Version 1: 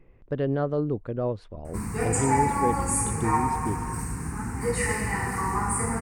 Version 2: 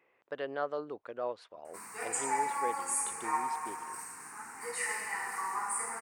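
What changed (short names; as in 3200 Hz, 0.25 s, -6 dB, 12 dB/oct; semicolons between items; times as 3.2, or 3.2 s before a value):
background -5.5 dB; master: add HPF 790 Hz 12 dB/oct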